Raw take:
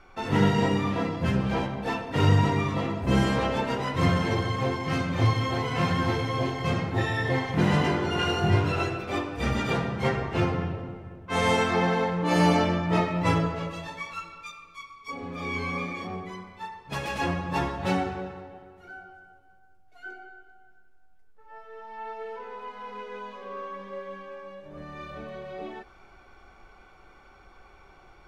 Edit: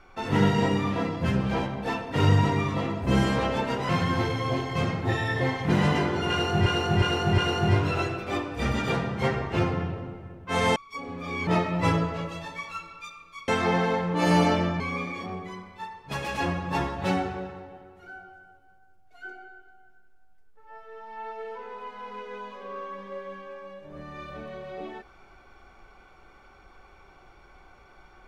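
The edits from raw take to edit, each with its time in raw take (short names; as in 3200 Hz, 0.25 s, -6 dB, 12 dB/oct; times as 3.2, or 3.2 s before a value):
3.89–5.78 cut
8.19–8.55 loop, 4 plays
11.57–12.89 swap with 14.9–15.61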